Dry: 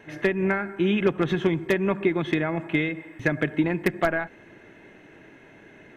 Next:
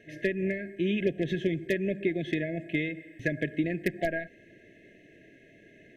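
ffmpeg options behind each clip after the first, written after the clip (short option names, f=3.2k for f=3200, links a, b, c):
-af "afftfilt=real='re*(1-between(b*sr/4096,700,1600))':imag='im*(1-between(b*sr/4096,700,1600))':win_size=4096:overlap=0.75,volume=-5.5dB"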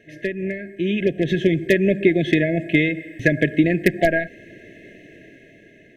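-af "dynaudnorm=f=350:g=7:m=9.5dB,volume=3dB"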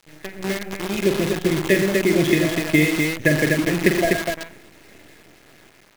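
-af "tremolo=f=1.8:d=0.6,aecho=1:1:46|86|121|124|248:0.398|0.158|0.299|0.106|0.631,acrusher=bits=5:dc=4:mix=0:aa=0.000001"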